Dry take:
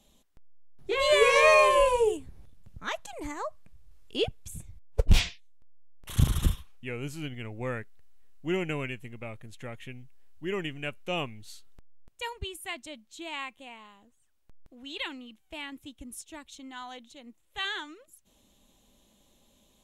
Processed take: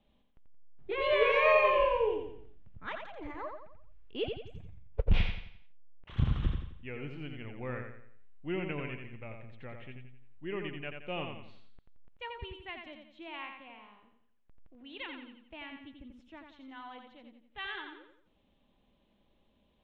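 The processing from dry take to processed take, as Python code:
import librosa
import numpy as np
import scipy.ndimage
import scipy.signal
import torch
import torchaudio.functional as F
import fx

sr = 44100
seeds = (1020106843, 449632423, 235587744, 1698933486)

p1 = scipy.signal.sosfilt(scipy.signal.butter(4, 3000.0, 'lowpass', fs=sr, output='sos'), x)
p2 = p1 + fx.echo_feedback(p1, sr, ms=87, feedback_pct=41, wet_db=-5.5, dry=0)
y = F.gain(torch.from_numpy(p2), -6.0).numpy()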